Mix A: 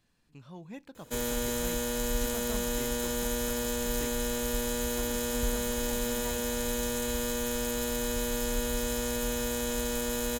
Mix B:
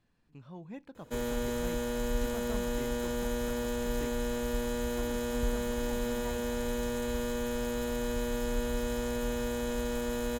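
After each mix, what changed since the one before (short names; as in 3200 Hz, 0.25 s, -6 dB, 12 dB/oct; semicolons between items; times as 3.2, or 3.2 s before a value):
master: add high shelf 3300 Hz -12 dB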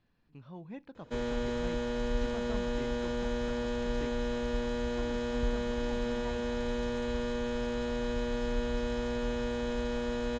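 master: add LPF 5400 Hz 24 dB/oct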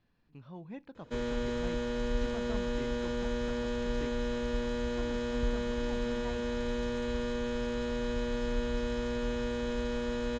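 background: add bell 750 Hz -11.5 dB 0.21 oct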